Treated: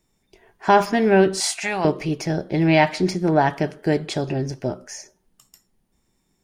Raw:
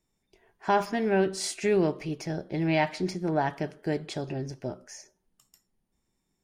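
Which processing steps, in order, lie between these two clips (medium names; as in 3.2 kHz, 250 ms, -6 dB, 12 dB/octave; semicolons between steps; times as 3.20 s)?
1.40–1.85 s: resonant low shelf 570 Hz -11 dB, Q 3; trim +9 dB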